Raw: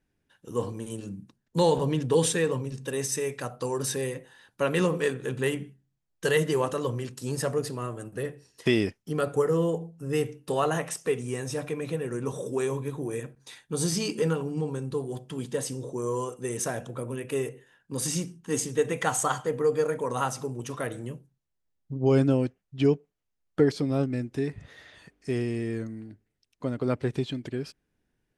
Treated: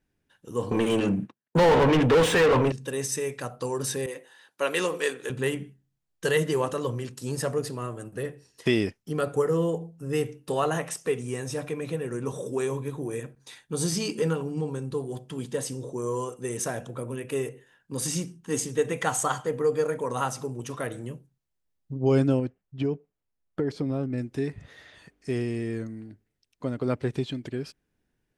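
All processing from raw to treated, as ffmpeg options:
-filter_complex "[0:a]asettb=1/sr,asplit=3[s0][s1][s2];[s0]atrim=end=0.714[s3];[s1]atrim=start=0.71:end=2.72,asetpts=PTS-STARTPTS,afade=t=in:d=0.004:c=qsin,afade=t=out:st=2.006:d=0.004:c=qsin,agate=range=0.0224:threshold=0.00501:ratio=3:release=100:detection=peak,highshelf=f=3500:t=q:w=1.5:g=-6.5,asplit=2[s4][s5];[s5]highpass=f=720:p=1,volume=39.8,asoftclip=type=tanh:threshold=0.251[s6];[s4][s6]amix=inputs=2:normalize=0,lowpass=f=1800:p=1,volume=0.501[s7];[s2]atrim=start=2.716[s8];[s3][s7]acrossfade=d=0.004:c1=hsin:c2=qsin[s9];[s9][s8]acrossfade=d=0.004:c1=qsin:c2=hsin,asettb=1/sr,asplit=3[s10][s11][s12];[s10]atrim=end=4.064[s13];[s11]atrim=start=4.06:end=5.3,asetpts=PTS-STARTPTS,afade=t=in:d=0.004:c=qsin,afade=t=out:st=1.236:d=0.004:c=qsin,highpass=360,adynamicequalizer=threshold=0.00794:dfrequency=1900:dqfactor=0.7:tfrequency=1900:tqfactor=0.7:attack=5:release=100:ratio=0.375:range=2.5:mode=boostabove:tftype=highshelf[s14];[s12]atrim=start=5.296[s15];[s13][s14]acrossfade=d=0.004:c1=hsin:c2=qsin[s16];[s16][s15]acrossfade=d=0.004:c1=qsin:c2=hsin,asettb=1/sr,asplit=3[s17][s18][s19];[s17]atrim=end=22.394[s20];[s18]atrim=start=22.39:end=24.18,asetpts=PTS-STARTPTS,afade=t=in:d=0.004:c=qsin,afade=t=out:st=1.786:d=0.004:c=qsin,highshelf=f=2600:g=-9.5,acompressor=threshold=0.0794:ratio=6:attack=3.2:release=140:knee=1:detection=peak[s21];[s19]atrim=start=24.176[s22];[s20][s21]acrossfade=d=0.004:c1=hsin:c2=qsin[s23];[s23][s22]acrossfade=d=0.004:c1=qsin:c2=hsin"

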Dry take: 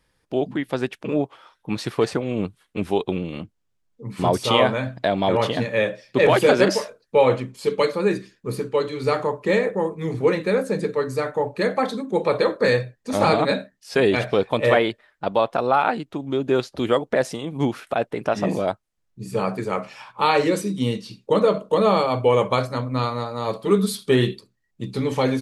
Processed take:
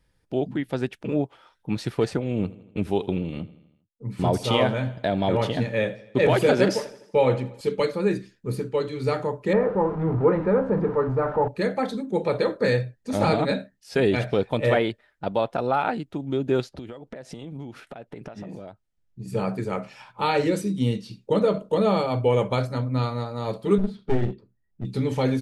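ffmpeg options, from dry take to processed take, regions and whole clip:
-filter_complex "[0:a]asettb=1/sr,asplit=3[s0][s1][s2];[s0]atrim=end=2.184[s3];[s1]atrim=start=2.18:end=7.61,asetpts=PTS-STARTPTS,afade=t=in:d=0.004:c=qsin,afade=t=out:st=5.426:d=0.004:c=qsin,agate=range=0.0224:threshold=0.0126:ratio=3:release=100:detection=peak,aecho=1:1:81|162|243|324|405:0.112|0.0662|0.0391|0.023|0.0136,atrim=end_sample=239463[s4];[s2]atrim=start=7.606[s5];[s3][s4]acrossfade=d=0.004:c1=hsin:c2=qsin[s6];[s6][s5]acrossfade=d=0.004:c1=qsin:c2=hsin,asettb=1/sr,asplit=3[s7][s8][s9];[s7]atrim=end=9.534[s10];[s8]atrim=start=9.53:end=11.48,asetpts=PTS-STARTPTS,afade=t=in:d=0.004:c=qsin,afade=t=out:st=1.946:d=0.004:c=qsin,aeval=exprs='val(0)+0.5*0.0422*sgn(val(0))':c=same,lowpass=f=1100:t=q:w=2.5[s11];[s9]atrim=start=11.476[s12];[s10][s11]acrossfade=d=0.004:c1=hsin:c2=qsin[s13];[s13][s12]acrossfade=d=0.004:c1=qsin:c2=hsin,asettb=1/sr,asplit=3[s14][s15][s16];[s14]atrim=end=16.694[s17];[s15]atrim=start=16.69:end=19.28,asetpts=PTS-STARTPTS,afade=t=in:d=0.004:c=qsin,afade=t=out:st=2.586:d=0.004:c=qsin,highshelf=f=9700:g=-11,acompressor=threshold=0.0282:ratio=20:attack=3.2:release=140:knee=1:detection=peak[s18];[s16]atrim=start=19.276[s19];[s17][s18]acrossfade=d=0.004:c1=hsin:c2=qsin[s20];[s20][s19]acrossfade=d=0.004:c1=qsin:c2=hsin,asettb=1/sr,asplit=3[s21][s22][s23];[s21]atrim=end=23.784[s24];[s22]atrim=start=23.78:end=24.85,asetpts=PTS-STARTPTS,afade=t=in:d=0.004:c=qsin,afade=t=out:st=1.066:d=0.004:c=qsin,lowpass=1500,aeval=exprs='clip(val(0),-1,0.0266)':c=same[s25];[s23]atrim=start=24.846[s26];[s24][s25]acrossfade=d=0.004:c1=hsin:c2=qsin[s27];[s27][s26]acrossfade=d=0.004:c1=qsin:c2=hsin,lowshelf=f=220:g=9,bandreject=f=1100:w=8.9,volume=0.562"

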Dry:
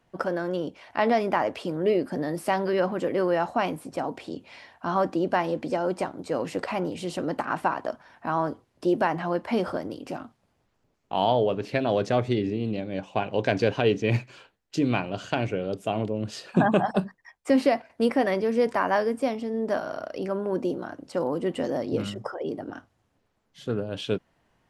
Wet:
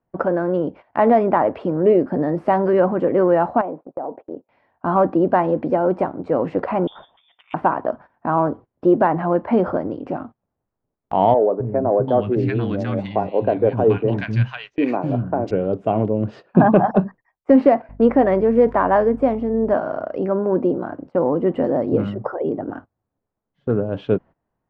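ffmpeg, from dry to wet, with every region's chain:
-filter_complex "[0:a]asettb=1/sr,asplit=3[s0][s1][s2];[s0]atrim=end=3.614[s3];[s1]atrim=start=3.61:end=4.49,asetpts=PTS-STARTPTS,afade=t=in:d=0.004:c=qsin,afade=t=out:st=0.876:d=0.004:c=qsin,agate=range=0.2:threshold=0.00631:ratio=16:release=100:detection=peak,bandpass=f=570:t=q:w=1.4,acompressor=threshold=0.0282:ratio=4:attack=3.2:release=140:knee=1:detection=peak[s4];[s2]atrim=start=4.486[s5];[s3][s4]acrossfade=d=0.004:c1=hsin:c2=qsin[s6];[s6][s5]acrossfade=d=0.004:c1=qsin:c2=hsin,asettb=1/sr,asplit=3[s7][s8][s9];[s7]atrim=end=6.874[s10];[s8]atrim=start=6.87:end=7.54,asetpts=PTS-STARTPTS,afade=t=in:d=0.004:c=qsin,afade=t=out:st=0.666:d=0.004:c=qsin,acrossover=split=270|1800[s11][s12][s13];[s11]acompressor=threshold=0.00708:ratio=4[s14];[s12]acompressor=threshold=0.02:ratio=4[s15];[s13]acompressor=threshold=0.00794:ratio=4[s16];[s14][s15][s16]amix=inputs=3:normalize=0,lowpass=f=3200:t=q:w=0.5098,lowpass=f=3200:t=q:w=0.6013,lowpass=f=3200:t=q:w=0.9,lowpass=f=3200:t=q:w=2.563,afreqshift=-3800[s17];[s9]atrim=start=7.536[s18];[s10][s17]acrossfade=d=0.004:c1=hsin:c2=qsin[s19];[s19][s18]acrossfade=d=0.004:c1=qsin:c2=hsin,asettb=1/sr,asplit=3[s20][s21][s22];[s20]atrim=end=11.344[s23];[s21]atrim=start=11.34:end=15.51,asetpts=PTS-STARTPTS,afade=t=in:d=0.004:c=qsin,afade=t=out:st=4.166:d=0.004:c=qsin,aemphasis=mode=production:type=75fm,acrossover=split=240|1200[s24][s25][s26];[s24]adelay=260[s27];[s26]adelay=740[s28];[s27][s25][s28]amix=inputs=3:normalize=0,atrim=end_sample=183897[s29];[s22]atrim=start=15.506[s30];[s23][s29]acrossfade=d=0.004:c1=hsin:c2=qsin[s31];[s31][s30]acrossfade=d=0.004:c1=qsin:c2=hsin,asettb=1/sr,asplit=3[s32][s33][s34];[s32]atrim=end=17.894[s35];[s33]atrim=start=17.89:end=19.74,asetpts=PTS-STARTPTS,afade=t=in:d=0.004:c=qsin,afade=t=out:st=1.846:d=0.004:c=qsin,equalizer=f=5100:t=o:w=0.25:g=-2.5,aeval=exprs='val(0)+0.00501*(sin(2*PI*50*n/s)+sin(2*PI*2*50*n/s)/2+sin(2*PI*3*50*n/s)/3+sin(2*PI*4*50*n/s)/4+sin(2*PI*5*50*n/s)/5)':c=same[s36];[s34]atrim=start=19.736[s37];[s35][s36]acrossfade=d=0.004:c1=hsin:c2=qsin[s38];[s38][s37]acrossfade=d=0.004:c1=qsin:c2=hsin,lowpass=1200,agate=range=0.141:threshold=0.00562:ratio=16:detection=peak,acontrast=31,volume=1.5"

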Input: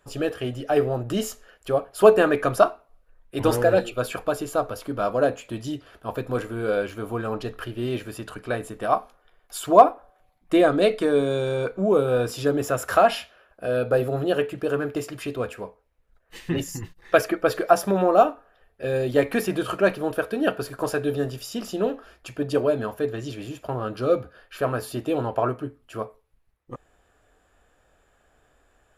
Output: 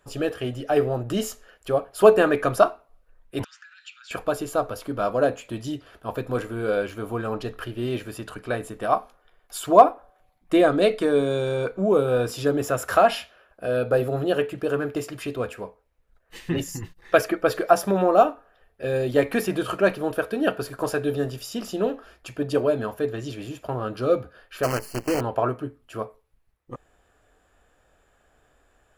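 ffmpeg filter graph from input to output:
-filter_complex "[0:a]asettb=1/sr,asplit=3[s0][s1][s2];[s0]atrim=end=3.444[s3];[s1]atrim=start=3.44:end=4.11,asetpts=PTS-STARTPTS,afade=t=in:d=0.004:c=qsin,afade=t=out:st=0.666:d=0.004:c=qsin,acompressor=threshold=0.0224:ratio=6:attack=3.2:release=140:knee=1:detection=peak,asuperpass=centerf=3300:order=12:qfactor=0.58[s4];[s2]atrim=start=4.106[s5];[s3][s4]acrossfade=d=0.004:c1=hsin:c2=qsin[s6];[s6][s5]acrossfade=d=0.004:c1=qsin:c2=hsin,asettb=1/sr,asplit=3[s7][s8][s9];[s7]atrim=end=24.634[s10];[s8]atrim=start=24.63:end=25.21,asetpts=PTS-STARTPTS,afade=t=in:d=0.004:c=qsin,afade=t=out:st=0.576:d=0.004:c=qsin,acrusher=bits=5:dc=4:mix=0:aa=0.000001,asuperstop=centerf=3600:order=20:qfactor=3.4[s11];[s9]atrim=start=25.206[s12];[s10][s11]acrossfade=d=0.004:c1=hsin:c2=qsin[s13];[s13][s12]acrossfade=d=0.004:c1=qsin:c2=hsin"

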